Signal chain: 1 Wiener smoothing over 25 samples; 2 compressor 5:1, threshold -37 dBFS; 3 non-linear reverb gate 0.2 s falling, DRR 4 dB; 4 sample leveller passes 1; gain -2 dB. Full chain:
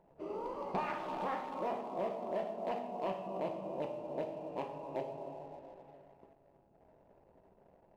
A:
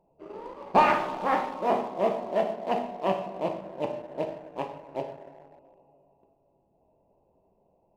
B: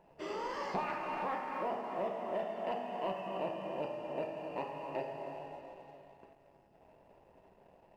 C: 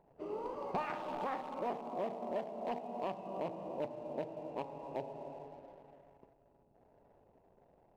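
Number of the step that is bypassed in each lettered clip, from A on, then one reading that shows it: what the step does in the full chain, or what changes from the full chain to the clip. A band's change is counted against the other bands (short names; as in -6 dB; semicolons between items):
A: 2, loudness change +11.0 LU; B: 1, 4 kHz band +4.5 dB; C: 3, loudness change -1.5 LU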